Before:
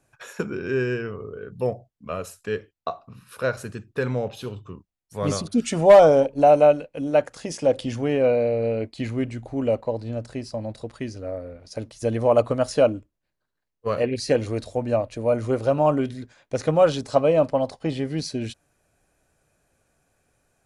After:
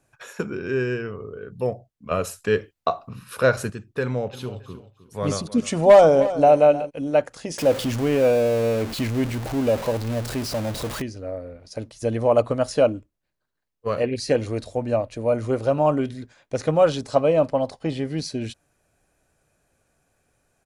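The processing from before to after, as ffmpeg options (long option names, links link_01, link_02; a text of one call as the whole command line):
ffmpeg -i in.wav -filter_complex "[0:a]asettb=1/sr,asplit=3[link_01][link_02][link_03];[link_01]atrim=end=2.114[link_04];[link_02]atrim=start=2.11:end=3.7,asetpts=PTS-STARTPTS,afade=type=in:duration=0.004:curve=qsin,afade=type=out:start_time=1.586:duration=0.004:curve=qsin,acontrast=75[link_05];[link_03]atrim=start=3.696[link_06];[link_04][link_05]acrossfade=duration=0.004:curve1=hsin:curve2=qsin[link_07];[link_07][link_06]acrossfade=duration=0.004:curve1=qsin:curve2=hsin,asplit=3[link_08][link_09][link_10];[link_08]afade=type=out:start_time=4.32:duration=0.02[link_11];[link_09]aecho=1:1:310|620:0.188|0.0377,afade=type=in:start_time=4.32:duration=0.02,afade=type=out:start_time=6.89:duration=0.02[link_12];[link_10]afade=type=in:start_time=6.89:duration=0.02[link_13];[link_11][link_12][link_13]amix=inputs=3:normalize=0,asettb=1/sr,asplit=3[link_14][link_15][link_16];[link_14]atrim=end=7.584[link_17];[link_15]atrim=start=7.58:end=11.02,asetpts=PTS-STARTPTS,afade=type=in:duration=0.004:curve=qsin,afade=type=out:start_time=3.436:duration=0.004:curve=qsin,aeval=exprs='val(0)+0.5*0.0473*sgn(val(0))':channel_layout=same[link_18];[link_16]atrim=start=11.016[link_19];[link_17][link_18]acrossfade=duration=0.004:curve1=hsin:curve2=qsin[link_20];[link_20][link_19]acrossfade=duration=0.004:curve1=qsin:curve2=hsin" out.wav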